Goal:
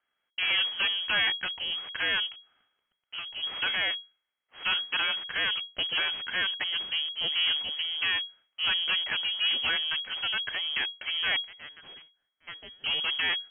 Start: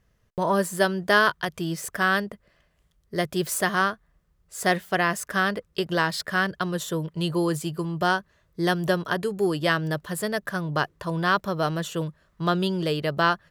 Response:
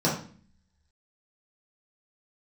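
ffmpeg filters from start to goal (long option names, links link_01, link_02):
-filter_complex "[0:a]asettb=1/sr,asplit=3[link_01][link_02][link_03];[link_01]atrim=end=11.364[link_04];[link_02]atrim=start=11.36:end=12.84,asetpts=PTS-STARTPTS,afade=type=in:duration=0.004:curve=qsin,afade=type=out:start_time=1.476:duration=0.004:curve=qsin,aderivative[link_05];[link_03]atrim=start=12.836[link_06];[link_04][link_05]acrossfade=duration=0.004:curve1=hsin:curve2=qsin[link_07];[link_07][link_06]acrossfade=duration=0.004:curve1=qsin:curve2=hsin,acrossover=split=810[link_08][link_09];[link_08]acrusher=bits=5:dc=4:mix=0:aa=0.000001[link_10];[link_10][link_09]amix=inputs=2:normalize=0,aeval=exprs='max(val(0),0)':channel_layout=same,highshelf=frequency=2400:gain=5,asoftclip=type=hard:threshold=-18.5dB,lowpass=frequency=2800:width_type=q:width=0.5098,lowpass=frequency=2800:width_type=q:width=0.6013,lowpass=frequency=2800:width_type=q:width=0.9,lowpass=frequency=2800:width_type=q:width=2.563,afreqshift=-3300,asplit=3[link_11][link_12][link_13];[link_11]afade=type=out:start_time=2.26:duration=0.02[link_14];[link_12]acompressor=threshold=-35dB:ratio=12,afade=type=in:start_time=2.26:duration=0.02,afade=type=out:start_time=3.42:duration=0.02[link_15];[link_13]afade=type=in:start_time=3.42:duration=0.02[link_16];[link_14][link_15][link_16]amix=inputs=3:normalize=0"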